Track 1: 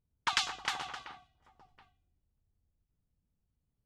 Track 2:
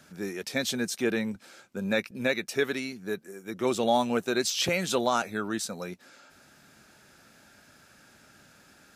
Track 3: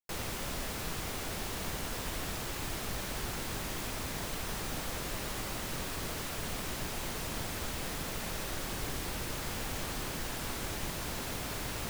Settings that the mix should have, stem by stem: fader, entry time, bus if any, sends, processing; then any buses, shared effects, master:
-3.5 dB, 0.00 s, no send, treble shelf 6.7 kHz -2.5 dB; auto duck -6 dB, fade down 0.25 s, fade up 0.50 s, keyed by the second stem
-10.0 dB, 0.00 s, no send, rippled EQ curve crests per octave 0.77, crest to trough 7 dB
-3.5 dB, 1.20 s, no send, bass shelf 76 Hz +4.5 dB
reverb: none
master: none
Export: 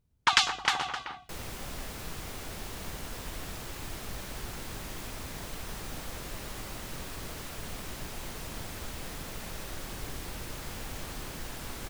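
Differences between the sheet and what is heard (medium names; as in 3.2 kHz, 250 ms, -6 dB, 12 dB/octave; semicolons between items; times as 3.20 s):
stem 1 -3.5 dB -> +8.0 dB; stem 2: muted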